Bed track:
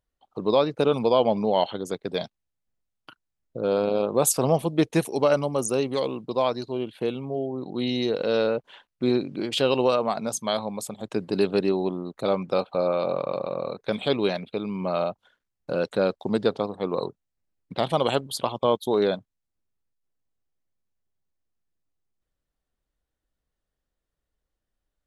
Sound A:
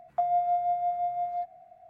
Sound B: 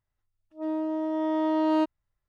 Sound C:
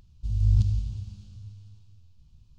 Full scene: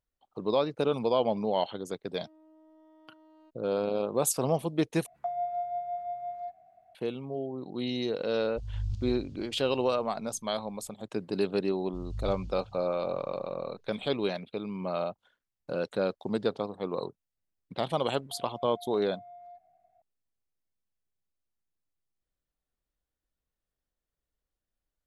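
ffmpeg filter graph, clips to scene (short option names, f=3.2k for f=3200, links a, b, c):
-filter_complex "[1:a]asplit=2[a][b];[3:a]asplit=2[c][d];[0:a]volume=-6dB[e];[2:a]acompressor=threshold=-42dB:ratio=6:attack=3.2:release=140:knee=1:detection=peak[f];[c]equalizer=f=160:w=0.86:g=-5[g];[d]aecho=1:1:5.9:0.65[h];[b]acompressor=threshold=-33dB:ratio=6:attack=3.2:release=140:knee=1:detection=peak[i];[e]asplit=2[j][k];[j]atrim=end=5.064[l];[a]atrim=end=1.89,asetpts=PTS-STARTPTS,volume=-6.5dB[m];[k]atrim=start=6.946[n];[f]atrim=end=2.28,asetpts=PTS-STARTPTS,volume=-15dB,afade=t=in:d=0.004:c=hsin,afade=t=out:st=2.276:d=0.004:c=hsin,adelay=1650[o];[g]atrim=end=2.58,asetpts=PTS-STARTPTS,volume=-10.5dB,afade=t=in:d=0.004:c=hsin,afade=t=out:st=2.576:d=0.004:c=hsin,adelay=8330[p];[h]atrim=end=2.58,asetpts=PTS-STARTPTS,volume=-14dB,afade=t=in:d=0.004:c=hsin,afade=t=out:st=2.576:d=0.004:c=hsin,adelay=515970S[q];[i]atrim=end=1.89,asetpts=PTS-STARTPTS,volume=-13.5dB,afade=t=in:d=0.004:c=hsin,afade=t=out:st=1.886:d=0.004:c=hsin,adelay=18130[r];[l][m]acrossfade=d=0.004:c1=hsin:c2=hsin[s];[s][n]acrossfade=d=0.004:c1=hsin:c2=hsin[t];[t][o][p][q][r]amix=inputs=5:normalize=0"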